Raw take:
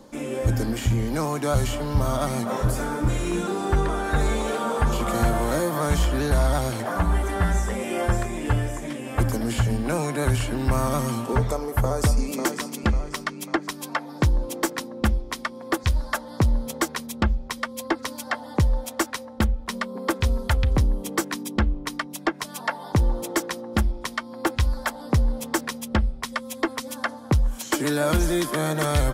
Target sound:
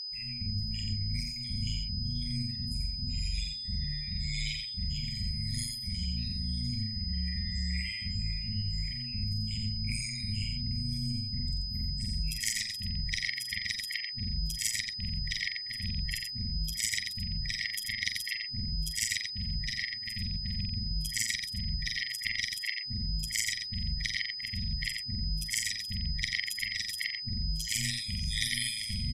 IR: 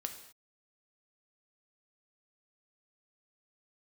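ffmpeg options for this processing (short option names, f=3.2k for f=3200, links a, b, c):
-af "afftfilt=real='re':imag='-im':win_size=4096:overlap=0.75,afftdn=nr=25:nf=-39,agate=range=-33dB:threshold=-39dB:ratio=3:detection=peak,afftfilt=real='re*(1-between(b*sr/4096,130,1900))':imag='im*(1-between(b*sr/4096,130,1900))':win_size=4096:overlap=0.75,equalizer=f=98:w=1.8:g=11.5,acontrast=68,alimiter=limit=-14.5dB:level=0:latency=1:release=288,areverse,acompressor=threshold=-33dB:ratio=16,areverse,bass=f=250:g=-4,treble=f=4k:g=2,tremolo=f=110:d=0.947,aeval=exprs='val(0)+0.00398*sin(2*PI*5000*n/s)':c=same,aecho=1:1:88:0.562,volume=8dB"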